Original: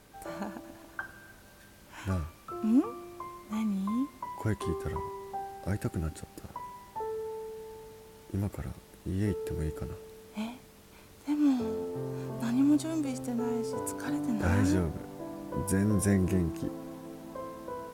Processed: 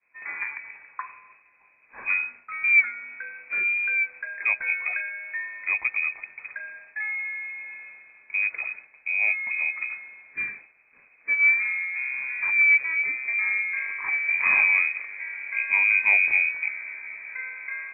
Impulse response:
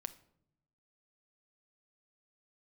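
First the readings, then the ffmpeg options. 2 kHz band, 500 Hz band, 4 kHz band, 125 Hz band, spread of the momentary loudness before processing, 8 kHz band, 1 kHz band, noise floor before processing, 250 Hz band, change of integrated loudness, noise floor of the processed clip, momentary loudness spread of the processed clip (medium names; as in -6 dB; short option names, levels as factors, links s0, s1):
+25.0 dB, under -15 dB, under -30 dB, under -30 dB, 17 LU, under -35 dB, -1.0 dB, -55 dBFS, under -30 dB, +10.0 dB, -59 dBFS, 19 LU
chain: -af "agate=range=0.0224:threshold=0.00501:ratio=3:detection=peak,equalizer=f=1300:t=o:w=0.77:g=-2.5,lowpass=f=2200:t=q:w=0.5098,lowpass=f=2200:t=q:w=0.6013,lowpass=f=2200:t=q:w=0.9,lowpass=f=2200:t=q:w=2.563,afreqshift=-2600,volume=2"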